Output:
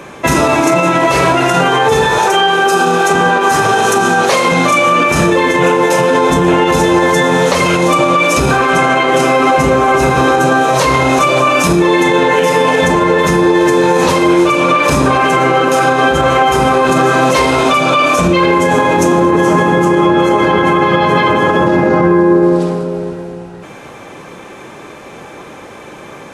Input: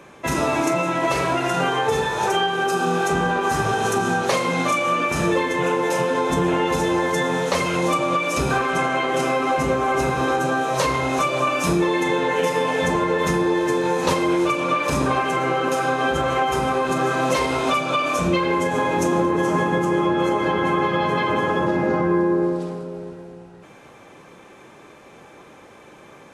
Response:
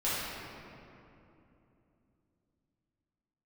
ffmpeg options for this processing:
-filter_complex "[0:a]asettb=1/sr,asplit=3[a][b][c];[a]atrim=end=2.184[d];[b]atrim=start=2.18:end=4.52,asetpts=PTS-STARTPTS,afade=t=in:d=0.004:c=qsin,afade=t=out:st=2.336:d=0.004:c=qsin,highpass=f=280:p=1[e];[c]atrim=start=4.516[f];[d][e]acrossfade=d=0.004:c1=hsin:c2=qsin[g];[g][f]acrossfade=d=0.004:c1=qsin:c2=hsin,alimiter=level_in=14.5dB:limit=-1dB:release=50:level=0:latency=1,volume=-1dB"

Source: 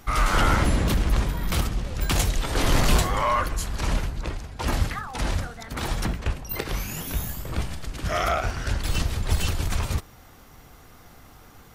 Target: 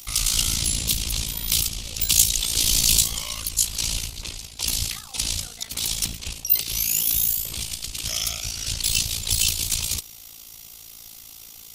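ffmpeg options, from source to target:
-filter_complex "[0:a]acrossover=split=260|3000[a][b][c];[b]acompressor=threshold=-35dB:ratio=6[d];[a][d][c]amix=inputs=3:normalize=0,aexciter=amount=5.3:drive=9.4:freq=2.5k,tremolo=f=56:d=0.75,volume=-5dB"

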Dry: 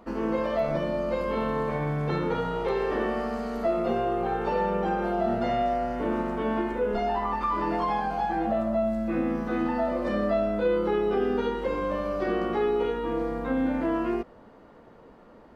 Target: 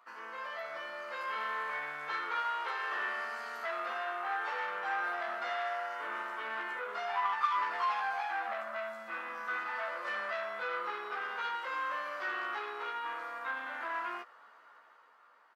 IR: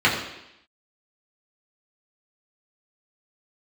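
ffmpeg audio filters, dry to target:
-filter_complex "[0:a]dynaudnorm=f=180:g=11:m=6dB,asoftclip=type=tanh:threshold=-18dB,highpass=f=1.3k:t=q:w=2.2,asplit=2[a][b];[b]adelay=14,volume=-5dB[c];[a][c]amix=inputs=2:normalize=0,volume=-8.5dB"

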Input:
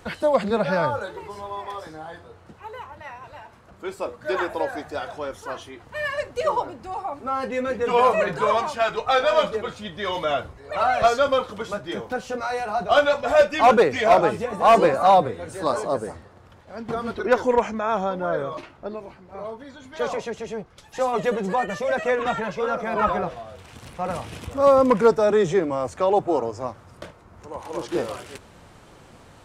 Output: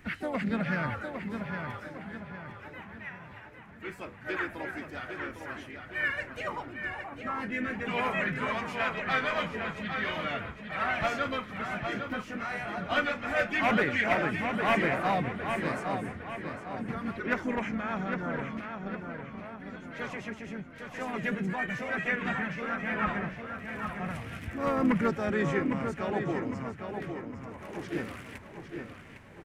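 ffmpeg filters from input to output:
-filter_complex "[0:a]equalizer=f=125:t=o:w=1:g=3,equalizer=f=250:t=o:w=1:g=5,equalizer=f=500:t=o:w=1:g=-11,equalizer=f=1k:t=o:w=1:g=-8,equalizer=f=2k:t=o:w=1:g=11,equalizer=f=4k:t=o:w=1:g=-8,equalizer=f=8k:t=o:w=1:g=-6,asplit=2[a][b];[b]adelay=807,lowpass=f=4.5k:p=1,volume=-6dB,asplit=2[c][d];[d]adelay=807,lowpass=f=4.5k:p=1,volume=0.46,asplit=2[e][f];[f]adelay=807,lowpass=f=4.5k:p=1,volume=0.46,asplit=2[g][h];[h]adelay=807,lowpass=f=4.5k:p=1,volume=0.46,asplit=2[i][j];[j]adelay=807,lowpass=f=4.5k:p=1,volume=0.46,asplit=2[k][l];[l]adelay=807,lowpass=f=4.5k:p=1,volume=0.46[m];[a][c][e][g][i][k][m]amix=inputs=7:normalize=0,asplit=3[n][o][p];[o]asetrate=37084,aresample=44100,atempo=1.18921,volume=-10dB[q];[p]asetrate=55563,aresample=44100,atempo=0.793701,volume=-12dB[r];[n][q][r]amix=inputs=3:normalize=0,volume=-6.5dB"

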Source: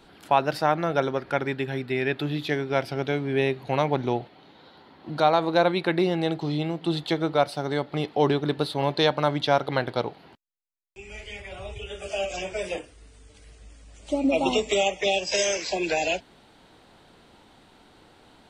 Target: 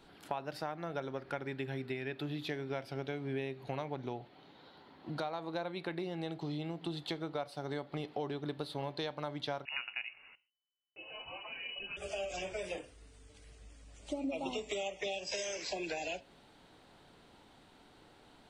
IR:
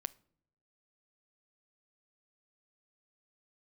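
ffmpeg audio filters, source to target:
-filter_complex "[0:a]acompressor=threshold=-29dB:ratio=6[a];[1:a]atrim=start_sample=2205,atrim=end_sample=6615[b];[a][b]afir=irnorm=-1:irlink=0,asettb=1/sr,asplit=3[c][d][e];[c]atrim=end=9.654[f];[d]atrim=start=9.65:end=11.97,asetpts=PTS-STARTPTS,afade=t=in:d=0.004:c=qsin,afade=t=out:st=2.316:d=0.004:c=qsin,lowpass=f=2.6k:t=q:w=0.5098,lowpass=f=2.6k:t=q:w=0.6013,lowpass=f=2.6k:t=q:w=0.9,lowpass=f=2.6k:t=q:w=2.563,afreqshift=-3000[g];[e]atrim=start=11.966[h];[f][g]acrossfade=d=0.004:c1=hsin:c2=qsin[i];[i][h]acrossfade=d=0.004:c1=qsin:c2=hsin,volume=-4.5dB"

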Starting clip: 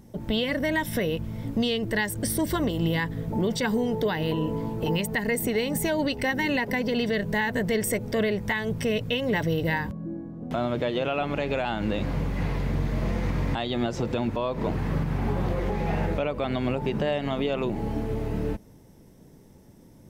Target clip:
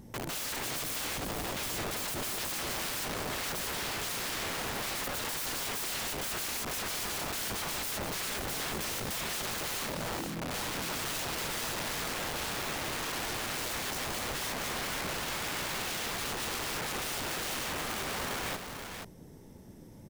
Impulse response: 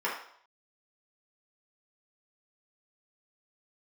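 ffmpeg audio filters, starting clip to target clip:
-filter_complex "[0:a]asettb=1/sr,asplit=3[a][b][c];[a]atrim=end=8.554[d];[b]atrim=start=8.55:end=10.73,asetpts=PTS-STARTPTS,afade=t=in:d=0.004:c=qsin,afade=t=out:st=2.176:d=0.004:c=qsin,highpass=110[e];[c]atrim=start=10.726[f];[d][e]acrossfade=d=0.004:c1=hsin:c2=qsin[g];[g][f]acrossfade=d=0.004:c1=qsin:c2=hsin,aeval=exprs='(mod(37.6*val(0)+1,2)-1)/37.6':c=same,aecho=1:1:481:0.473"

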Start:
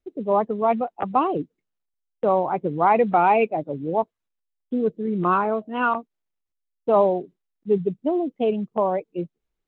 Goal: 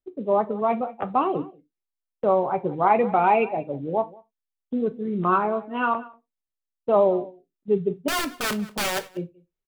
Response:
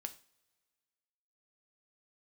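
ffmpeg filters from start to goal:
-filter_complex "[0:a]asettb=1/sr,asplit=3[a][b][c];[a]atrim=end=8.084[d];[b]atrim=start=8.08:end=9.07,asetpts=PTS-STARTPTS,afade=t=in:d=0.004:c=qsin,afade=t=out:st=0.986:d=0.004:c=qsin,aeval=exprs='(mod(9.44*val(0)+1,2)-1)/9.44':c=same[e];[c]atrim=start=9.066[f];[d][e]acrossfade=d=0.004:c1=hsin:c2=qsin[g];[g][f]acrossfade=d=0.004:c1=qsin:c2=hsin,asplit=2[h][i];[i]adelay=186.6,volume=-19dB,highshelf=f=4k:g=-4.2[j];[h][j]amix=inputs=2:normalize=0,agate=range=-7dB:threshold=-34dB:ratio=16:detection=peak[k];[1:a]atrim=start_sample=2205,afade=t=out:st=0.21:d=0.01,atrim=end_sample=9702,asetrate=70560,aresample=44100[l];[k][l]afir=irnorm=-1:irlink=0,volume=6dB"

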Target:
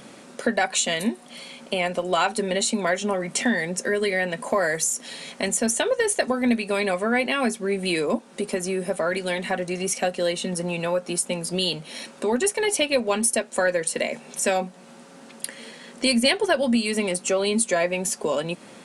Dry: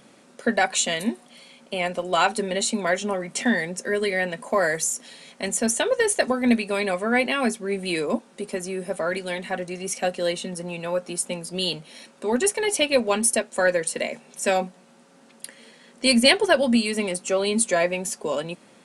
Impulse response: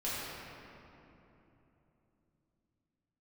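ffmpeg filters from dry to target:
-af "acompressor=threshold=-34dB:ratio=2,volume=8dB"

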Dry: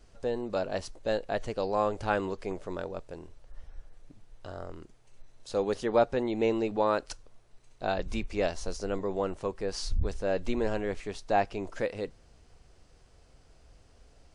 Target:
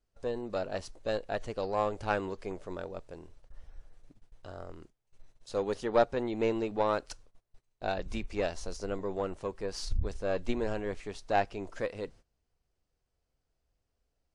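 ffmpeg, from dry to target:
-af "aeval=exprs='0.251*(cos(1*acos(clip(val(0)/0.251,-1,1)))-cos(1*PI/2))+0.0224*(cos(3*acos(clip(val(0)/0.251,-1,1)))-cos(3*PI/2))+0.0158*(cos(4*acos(clip(val(0)/0.251,-1,1)))-cos(4*PI/2))+0.00224*(cos(7*acos(clip(val(0)/0.251,-1,1)))-cos(7*PI/2))':c=same,agate=range=-19dB:threshold=-52dB:ratio=16:detection=peak"

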